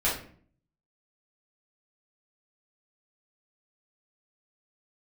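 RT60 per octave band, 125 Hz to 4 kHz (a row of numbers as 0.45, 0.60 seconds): 0.80, 0.70, 0.55, 0.45, 0.45, 0.35 seconds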